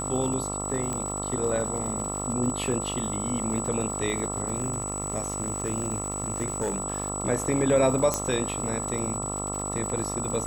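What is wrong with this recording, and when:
mains buzz 50 Hz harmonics 27 −34 dBFS
surface crackle 200 per second −34 dBFS
whistle 7,900 Hz −32 dBFS
0:00.93: click −18 dBFS
0:04.57–0:06.80: clipping −22.5 dBFS
0:08.14: click −9 dBFS

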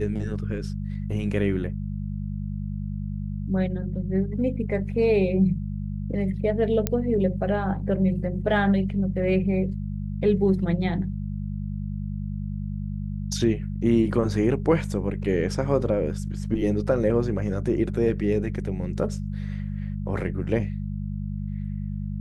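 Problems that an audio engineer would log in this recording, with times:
mains hum 50 Hz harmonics 4 −30 dBFS
0:06.87: click −8 dBFS

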